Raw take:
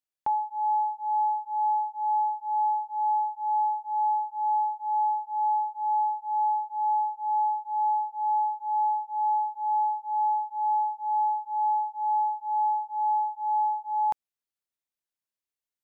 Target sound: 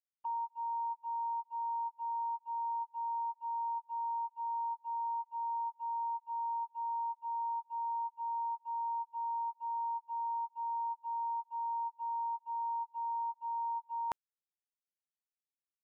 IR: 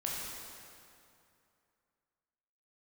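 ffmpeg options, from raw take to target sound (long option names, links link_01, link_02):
-af "agate=range=-25dB:threshold=-31dB:ratio=16:detection=peak,areverse,acompressor=threshold=-36dB:ratio=6,areverse,asetrate=48091,aresample=44100,atempo=0.917004"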